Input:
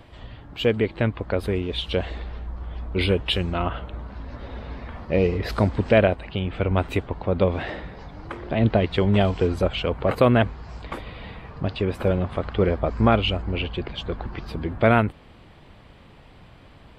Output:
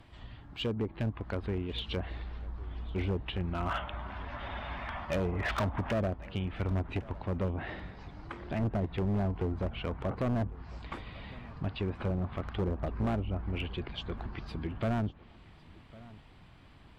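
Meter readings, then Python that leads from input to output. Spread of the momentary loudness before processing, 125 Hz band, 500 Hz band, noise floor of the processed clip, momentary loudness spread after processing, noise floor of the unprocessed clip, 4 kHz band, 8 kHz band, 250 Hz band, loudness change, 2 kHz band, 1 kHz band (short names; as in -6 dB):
18 LU, -8.5 dB, -14.5 dB, -55 dBFS, 13 LU, -49 dBFS, -12.5 dB, n/a, -10.0 dB, -12.0 dB, -11.0 dB, -11.0 dB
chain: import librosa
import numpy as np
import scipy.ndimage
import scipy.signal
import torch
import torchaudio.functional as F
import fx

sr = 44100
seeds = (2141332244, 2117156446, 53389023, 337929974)

y = fx.env_lowpass_down(x, sr, base_hz=740.0, full_db=-17.0)
y = fx.spec_box(y, sr, start_s=3.69, length_s=2.24, low_hz=540.0, high_hz=3700.0, gain_db=11)
y = fx.peak_eq(y, sr, hz=510.0, db=-7.0, octaves=0.72)
y = np.clip(y, -10.0 ** (-19.5 / 20.0), 10.0 ** (-19.5 / 20.0))
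y = fx.echo_feedback(y, sr, ms=1105, feedback_pct=23, wet_db=-21.0)
y = y * librosa.db_to_amplitude(-7.0)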